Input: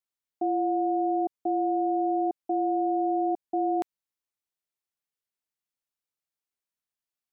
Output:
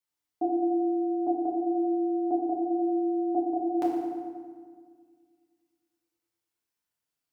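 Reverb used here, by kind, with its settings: FDN reverb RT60 1.8 s, low-frequency decay 1.35×, high-frequency decay 0.65×, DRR -5 dB; trim -1 dB

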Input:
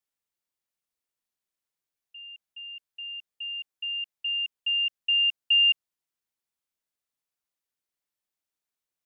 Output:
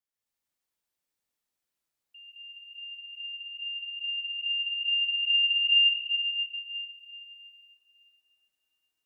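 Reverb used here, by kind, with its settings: plate-style reverb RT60 3.6 s, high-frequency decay 0.8×, pre-delay 110 ms, DRR -8.5 dB; trim -6 dB

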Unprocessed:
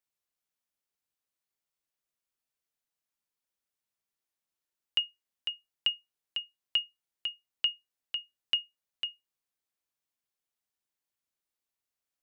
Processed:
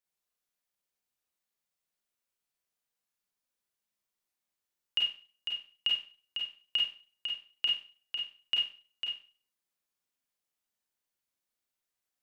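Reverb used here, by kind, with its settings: Schroeder reverb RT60 0.39 s, combs from 31 ms, DRR -1.5 dB; trim -2.5 dB

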